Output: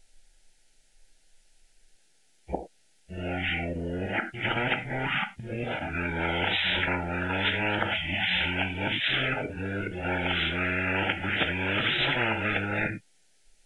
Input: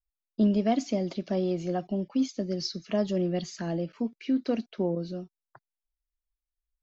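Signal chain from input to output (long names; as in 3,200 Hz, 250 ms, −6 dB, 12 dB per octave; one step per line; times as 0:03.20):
played backwards from end to start
wrong playback speed 15 ips tape played at 7.5 ips
Butterworth band-reject 1,100 Hz, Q 2.1
reverb whose tail is shaped and stops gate 130 ms falling, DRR 9 dB
every bin compressed towards the loudest bin 10 to 1
level +5 dB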